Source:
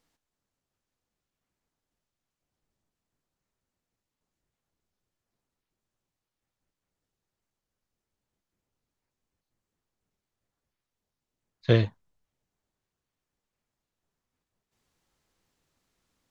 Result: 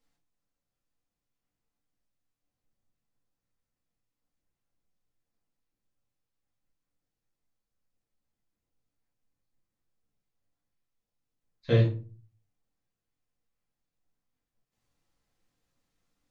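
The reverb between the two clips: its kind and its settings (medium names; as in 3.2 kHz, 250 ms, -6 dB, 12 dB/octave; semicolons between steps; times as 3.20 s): simulated room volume 180 m³, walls furnished, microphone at 2.1 m; trim -9 dB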